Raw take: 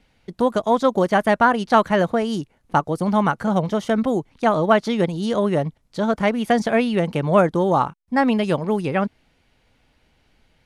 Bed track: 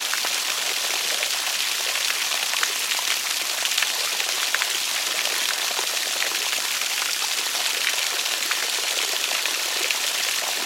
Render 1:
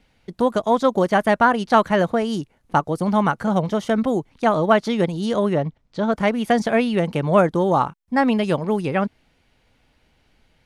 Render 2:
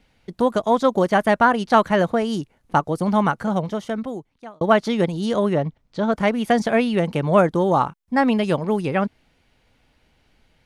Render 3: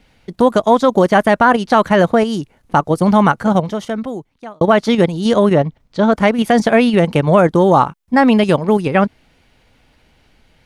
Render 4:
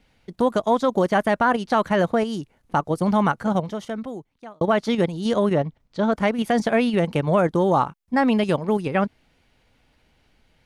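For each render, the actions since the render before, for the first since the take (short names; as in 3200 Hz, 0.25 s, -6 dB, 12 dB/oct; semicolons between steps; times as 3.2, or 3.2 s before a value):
5.53–6.12 air absorption 99 m
3.23–4.61 fade out
in parallel at 0 dB: level quantiser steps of 22 dB; on the sum: maximiser +3.5 dB
gain -8 dB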